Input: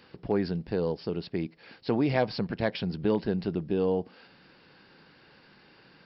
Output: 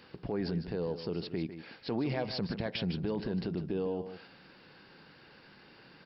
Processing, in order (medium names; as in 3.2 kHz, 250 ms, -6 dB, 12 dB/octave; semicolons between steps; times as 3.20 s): peak limiter -24.5 dBFS, peak gain reduction 10 dB; delay 153 ms -11 dB